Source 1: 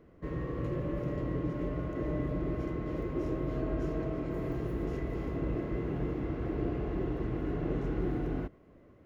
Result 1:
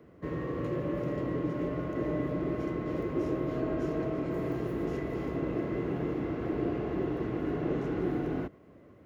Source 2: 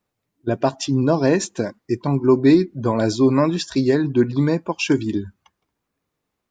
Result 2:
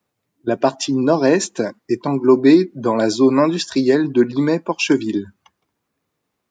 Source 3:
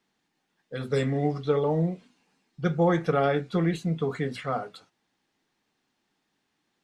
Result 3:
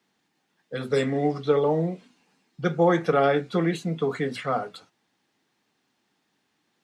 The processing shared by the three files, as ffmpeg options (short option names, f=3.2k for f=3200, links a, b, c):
-filter_complex "[0:a]highpass=82,acrossover=split=180|2200[a][b][c];[a]acompressor=threshold=-43dB:ratio=6[d];[d][b][c]amix=inputs=3:normalize=0,volume=3.5dB"